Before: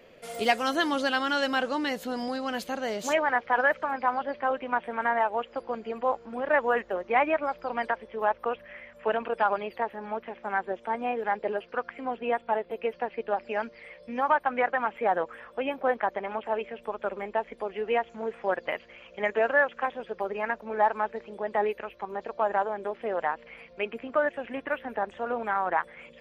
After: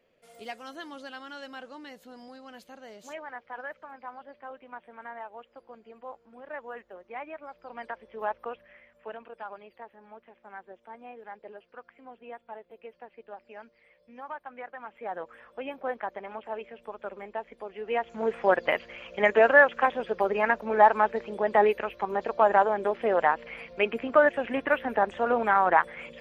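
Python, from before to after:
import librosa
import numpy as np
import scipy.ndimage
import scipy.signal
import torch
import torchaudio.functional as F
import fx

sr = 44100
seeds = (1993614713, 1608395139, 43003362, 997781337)

y = fx.gain(x, sr, db=fx.line((7.35, -15.5), (8.26, -5.0), (9.32, -15.5), (14.73, -15.5), (15.37, -6.5), (17.78, -6.5), (18.29, 5.5)))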